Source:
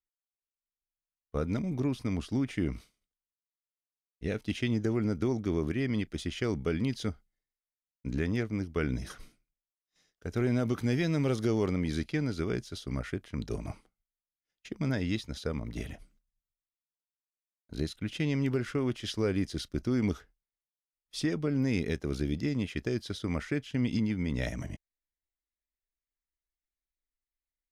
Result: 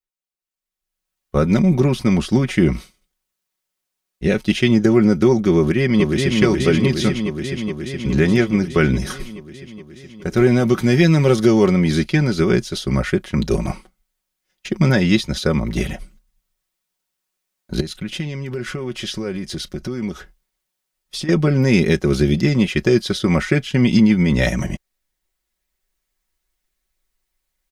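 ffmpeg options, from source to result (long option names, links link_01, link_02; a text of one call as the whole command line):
ffmpeg -i in.wav -filter_complex "[0:a]asplit=2[link_01][link_02];[link_02]afade=type=in:start_time=5.57:duration=0.01,afade=type=out:start_time=6.35:duration=0.01,aecho=0:1:420|840|1260|1680|2100|2520|2940|3360|3780|4200|4620|5040:0.749894|0.562421|0.421815|0.316362|0.237271|0.177953|0.133465|0.100099|0.0750741|0.0563056|0.0422292|0.0316719[link_03];[link_01][link_03]amix=inputs=2:normalize=0,asettb=1/sr,asplit=3[link_04][link_05][link_06];[link_04]atrim=end=17.804[link_07];[link_05]atrim=start=17.8:end=21.29,asetpts=PTS-STARTPTS,afade=type=in:duration=0.004:curve=qsin,afade=type=out:start_time=3.486:duration=0.004:curve=qsin,acompressor=threshold=-42dB:ratio=4:attack=3.2:release=140:knee=1:detection=peak[link_08];[link_06]atrim=start=21.286[link_09];[link_07][link_08]acrossfade=duration=0.004:curve1=hsin:curve2=qsin[link_10];[link_10][link_09]acrossfade=duration=0.004:curve1=qsin:curve2=hsin,aecho=1:1:5.4:0.64,dynaudnorm=framelen=380:gausssize=5:maxgain=16.5dB" out.wav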